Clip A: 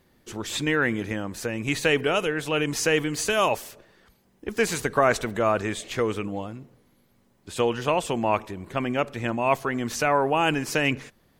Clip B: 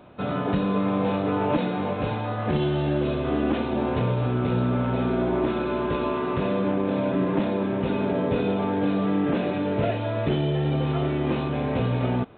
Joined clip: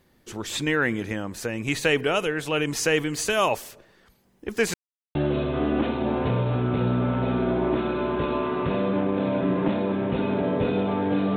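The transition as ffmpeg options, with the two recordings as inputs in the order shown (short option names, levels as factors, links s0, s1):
-filter_complex "[0:a]apad=whole_dur=11.36,atrim=end=11.36,asplit=2[s0][s1];[s0]atrim=end=4.74,asetpts=PTS-STARTPTS,afade=t=out:st=4.736:d=0.004:c=hsin[s2];[s1]atrim=start=4.74:end=5.15,asetpts=PTS-STARTPTS,volume=0[s3];[1:a]atrim=start=2.86:end=9.07,asetpts=PTS-STARTPTS,afade=t=in:d=0.004:c=hsin[s4];[s2][s3][s4]concat=n=3:v=0:a=1"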